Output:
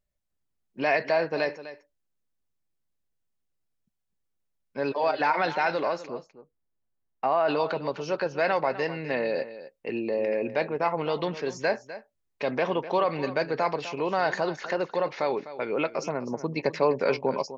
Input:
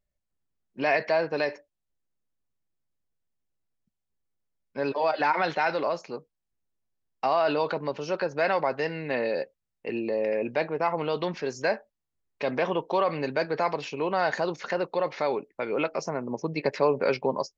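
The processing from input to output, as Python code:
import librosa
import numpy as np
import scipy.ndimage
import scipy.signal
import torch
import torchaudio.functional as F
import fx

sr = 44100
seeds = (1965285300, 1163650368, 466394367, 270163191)

p1 = fx.lowpass(x, sr, hz=fx.line((6.06, 1400.0), (7.47, 2300.0)), slope=12, at=(6.06, 7.47), fade=0.02)
y = p1 + fx.echo_single(p1, sr, ms=252, db=-14.0, dry=0)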